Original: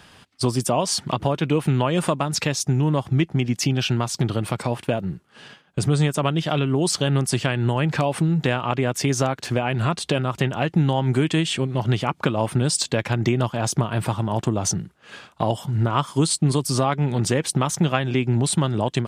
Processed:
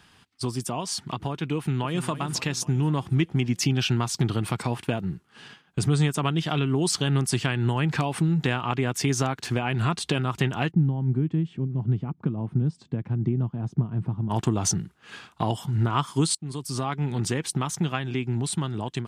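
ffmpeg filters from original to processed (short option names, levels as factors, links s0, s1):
-filter_complex "[0:a]asplit=2[s0][s1];[s1]afade=t=in:st=1.56:d=0.01,afade=t=out:st=2.09:d=0.01,aecho=0:1:270|540|810|1080|1350|1620:0.237137|0.130426|0.0717341|0.0394537|0.0216996|0.0119348[s2];[s0][s2]amix=inputs=2:normalize=0,asplit=3[s3][s4][s5];[s3]afade=t=out:st=10.7:d=0.02[s6];[s4]bandpass=f=160:t=q:w=1.1,afade=t=in:st=10.7:d=0.02,afade=t=out:st=14.29:d=0.02[s7];[s5]afade=t=in:st=14.29:d=0.02[s8];[s6][s7][s8]amix=inputs=3:normalize=0,asplit=2[s9][s10];[s9]atrim=end=16.35,asetpts=PTS-STARTPTS,afade=t=out:st=16.346:d=0.004:c=hsin:silence=0.0794328[s11];[s10]atrim=start=16.35,asetpts=PTS-STARTPTS,afade=t=in:d=0.97:c=qsin:silence=0.0794328[s12];[s11][s12]concat=n=2:v=0:a=1,equalizer=f=570:w=3.4:g=-9.5,dynaudnorm=f=630:g=9:m=3.76,volume=0.447"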